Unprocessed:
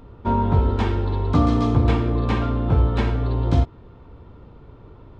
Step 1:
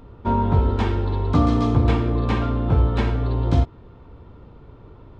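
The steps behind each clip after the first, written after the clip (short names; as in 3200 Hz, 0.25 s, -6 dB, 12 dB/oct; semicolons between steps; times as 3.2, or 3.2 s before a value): nothing audible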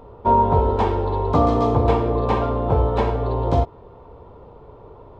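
band shelf 660 Hz +11 dB; gain -2.5 dB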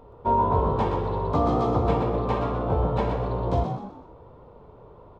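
frequency-shifting echo 0.124 s, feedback 38%, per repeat +66 Hz, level -6.5 dB; gain -6 dB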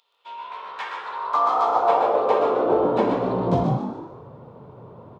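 high-pass sweep 3500 Hz -> 130 Hz, 0.05–3.89; frequency-shifting echo 0.148 s, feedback 36%, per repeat +100 Hz, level -10 dB; gain +3 dB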